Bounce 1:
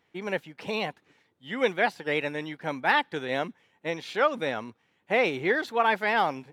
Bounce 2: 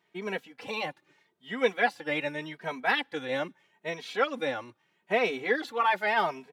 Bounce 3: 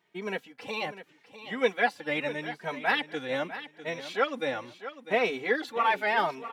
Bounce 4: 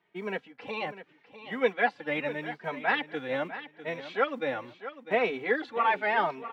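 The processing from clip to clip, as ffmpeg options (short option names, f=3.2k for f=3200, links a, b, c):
-filter_complex "[0:a]highpass=f=190:p=1,asplit=2[a][b];[b]adelay=2.8,afreqshift=0.81[c];[a][c]amix=inputs=2:normalize=1,volume=1.5dB"
-af "aecho=1:1:650|1300|1950:0.224|0.0627|0.0176"
-filter_complex "[0:a]lowpass=2.9k,acrossover=split=130|1600[a][b][c];[a]acrusher=samples=40:mix=1:aa=0.000001[d];[d][b][c]amix=inputs=3:normalize=0"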